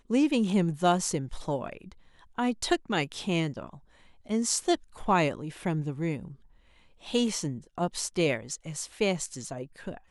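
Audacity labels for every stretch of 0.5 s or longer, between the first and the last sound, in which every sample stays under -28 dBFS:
1.730000	2.380000	silence
3.640000	4.300000	silence
6.170000	7.140000	silence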